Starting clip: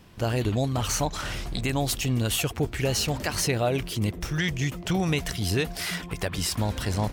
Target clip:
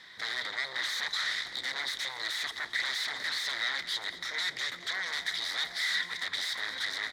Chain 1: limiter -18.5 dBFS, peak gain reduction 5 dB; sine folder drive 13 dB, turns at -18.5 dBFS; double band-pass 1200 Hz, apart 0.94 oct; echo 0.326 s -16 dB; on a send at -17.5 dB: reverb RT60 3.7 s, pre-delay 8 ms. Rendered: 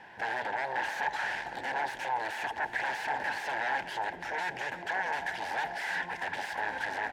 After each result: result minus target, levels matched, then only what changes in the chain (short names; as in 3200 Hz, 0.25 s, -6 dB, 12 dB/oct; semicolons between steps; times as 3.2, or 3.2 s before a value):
1000 Hz band +13.5 dB; echo 0.109 s late
change: double band-pass 2700 Hz, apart 0.94 oct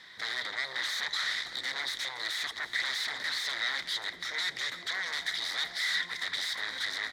echo 0.109 s late
change: echo 0.217 s -16 dB